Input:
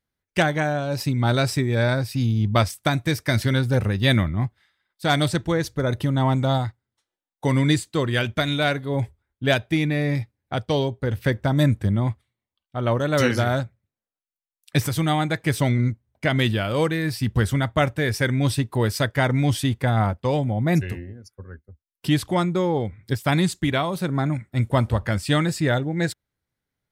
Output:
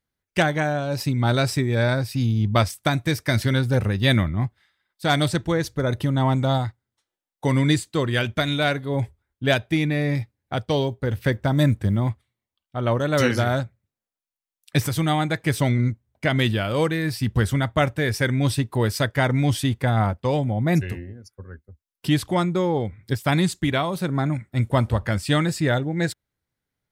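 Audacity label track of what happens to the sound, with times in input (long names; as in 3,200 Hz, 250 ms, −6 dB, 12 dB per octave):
10.170000	12.100000	floating-point word with a short mantissa of 6 bits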